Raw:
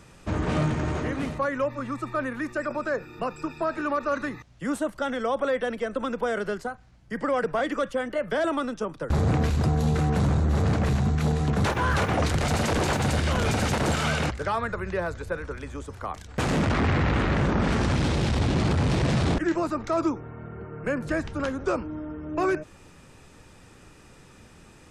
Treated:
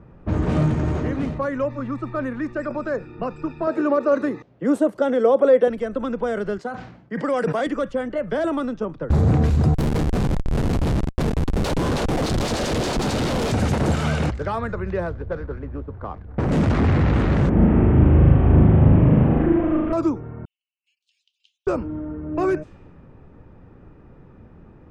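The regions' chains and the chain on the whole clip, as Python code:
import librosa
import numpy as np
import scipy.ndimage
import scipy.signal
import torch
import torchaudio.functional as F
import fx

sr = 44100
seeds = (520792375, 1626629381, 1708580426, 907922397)

y = fx.chain(x, sr, fx.highpass(hz=170.0, slope=12),
    fx.peak_eq(hz=450.0, db=10.0, octaves=1.2), at=(3.67, 5.68))
y = fx.chain(y, sr, fx.highpass(hz=200.0, slope=12),
    fx.high_shelf(hz=2900.0, db=8.5),
    fx.sustainer(db_per_s=75.0), at=(6.58, 7.67))
y = fx.chain(y, sr, fx.highpass(hz=260.0, slope=12),
    fx.high_shelf_res(hz=2700.0, db=13.0, q=1.5),
    fx.schmitt(flips_db=-22.0), at=(9.74, 13.52))
y = fx.chain(y, sr, fx.median_filter(points=15),
    fx.high_shelf(hz=5500.0, db=-9.0),
    fx.doppler_dist(depth_ms=0.53), at=(15.09, 16.52))
y = fx.chain(y, sr, fx.delta_mod(bps=16000, step_db=-39.5),
    fx.air_absorb(metres=170.0),
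    fx.room_flutter(wall_m=6.6, rt60_s=1.2), at=(17.49, 19.93))
y = fx.chain(y, sr, fx.steep_highpass(hz=2900.0, slope=72),
    fx.high_shelf(hz=5600.0, db=5.5), at=(20.45, 21.67))
y = fx.env_lowpass(y, sr, base_hz=1300.0, full_db=-21.5)
y = fx.tilt_shelf(y, sr, db=5.0, hz=730.0)
y = y * librosa.db_to_amplitude(1.5)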